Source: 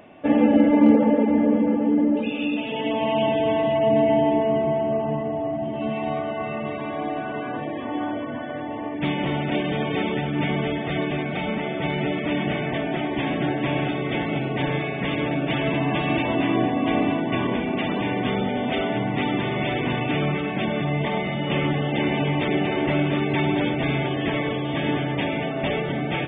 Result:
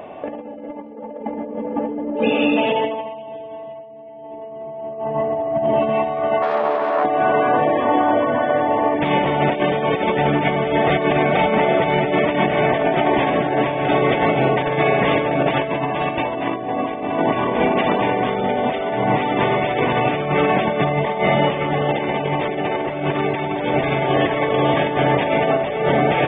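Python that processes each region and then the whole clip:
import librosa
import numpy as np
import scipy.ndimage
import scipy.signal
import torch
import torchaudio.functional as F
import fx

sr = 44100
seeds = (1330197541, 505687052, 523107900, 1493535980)

y = fx.chain(x, sr, fx.self_delay(depth_ms=0.4),
    fx.bandpass_edges(low_hz=360.0, high_hz=3200.0),
    fx.high_shelf(hz=2300.0, db=-10.5), at=(6.42, 7.05))
y = fx.band_shelf(y, sr, hz=680.0, db=8.5, octaves=1.7)
y = fx.over_compress(y, sr, threshold_db=-22.0, ratio=-0.5)
y = fx.dynamic_eq(y, sr, hz=1700.0, q=1.4, threshold_db=-40.0, ratio=4.0, max_db=5)
y = y * librosa.db_to_amplitude(2.5)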